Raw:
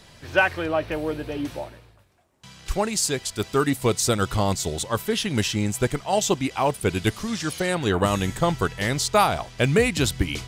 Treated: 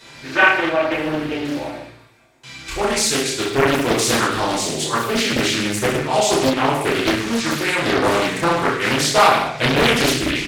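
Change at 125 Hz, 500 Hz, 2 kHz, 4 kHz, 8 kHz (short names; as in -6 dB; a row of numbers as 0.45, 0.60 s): -1.0, +5.0, +8.5, +8.0, +4.5 dB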